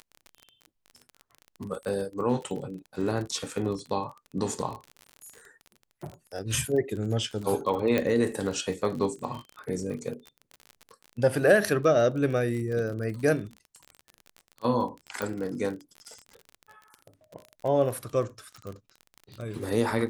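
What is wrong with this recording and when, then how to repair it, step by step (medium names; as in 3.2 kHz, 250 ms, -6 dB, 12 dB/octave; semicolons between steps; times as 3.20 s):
crackle 34 per s -34 dBFS
7.98 s: pop -13 dBFS
15.22 s: pop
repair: de-click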